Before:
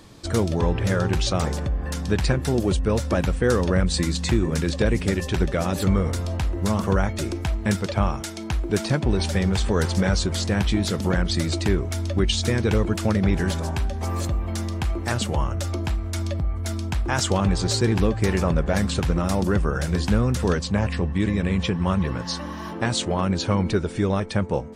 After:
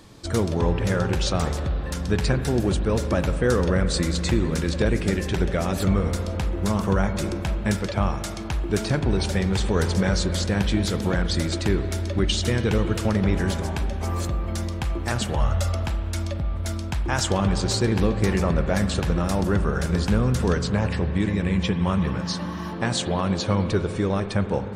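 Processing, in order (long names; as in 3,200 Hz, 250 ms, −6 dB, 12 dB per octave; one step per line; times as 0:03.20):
0:15.40–0:15.86: comb filter 1.5 ms, depth 79%
spring reverb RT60 3.5 s, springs 40/47 ms, chirp 65 ms, DRR 8.5 dB
level −1 dB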